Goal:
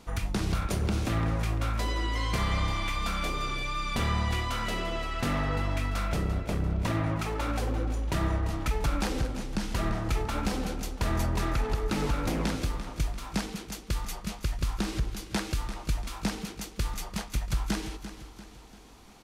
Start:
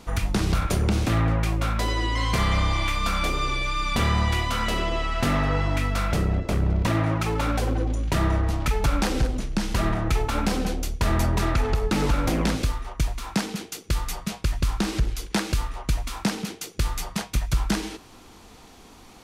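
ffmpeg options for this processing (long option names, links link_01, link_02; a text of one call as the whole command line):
ffmpeg -i in.wav -af "aecho=1:1:343|686|1029|1372|1715:0.251|0.116|0.0532|0.0244|0.0112,volume=-6dB" out.wav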